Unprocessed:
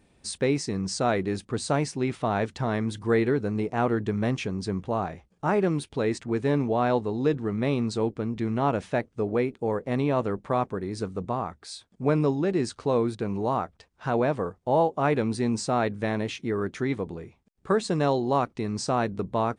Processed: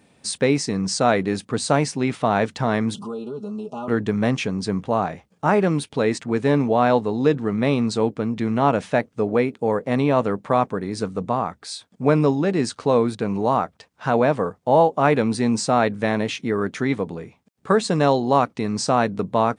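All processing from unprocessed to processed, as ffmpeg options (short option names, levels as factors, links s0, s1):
-filter_complex "[0:a]asettb=1/sr,asplit=3[s0][s1][s2];[s0]atrim=end=2.944[s3];[s1]atrim=start=2.94:end=3.88,asetpts=PTS-STARTPTS,afade=t=in:d=0.004:c=qsin,afade=t=out:st=0.936:d=0.004:c=qsin,aecho=1:1:4.9:0.98,atrim=end_sample=41454,acompressor=threshold=0.0158:ratio=4:attack=3.2:release=140:knee=1:detection=peak,asuperstop=centerf=1900:order=12:qfactor=1.5[s4];[s2]atrim=start=3.876[s5];[s3][s4]acrossfade=d=0.004:c1=hsin:c2=qsin[s6];[s6][s5]acrossfade=d=0.004:c1=qsin:c2=hsin,highpass=130,equalizer=f=360:t=o:w=0.24:g=-7,volume=2.24"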